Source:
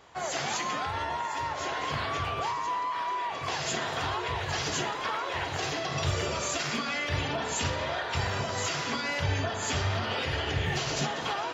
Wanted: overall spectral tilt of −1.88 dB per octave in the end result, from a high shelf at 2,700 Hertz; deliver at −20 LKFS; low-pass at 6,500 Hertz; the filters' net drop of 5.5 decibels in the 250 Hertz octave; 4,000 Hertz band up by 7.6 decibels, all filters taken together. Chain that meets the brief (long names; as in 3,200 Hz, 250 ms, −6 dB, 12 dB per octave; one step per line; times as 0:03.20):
low-pass filter 6,500 Hz
parametric band 250 Hz −8.5 dB
high-shelf EQ 2,700 Hz +3.5 dB
parametric band 4,000 Hz +7.5 dB
level +7.5 dB